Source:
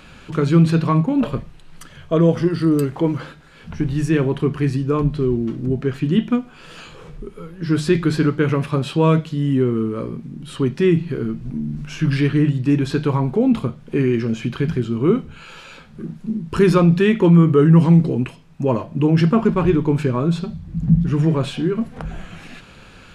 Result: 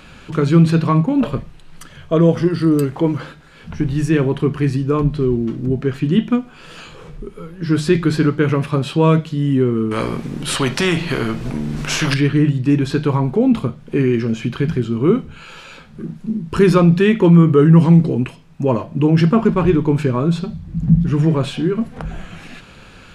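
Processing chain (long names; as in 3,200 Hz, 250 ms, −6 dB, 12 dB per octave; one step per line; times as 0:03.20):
0:09.91–0:12.14: every bin compressed towards the loudest bin 2 to 1
level +2 dB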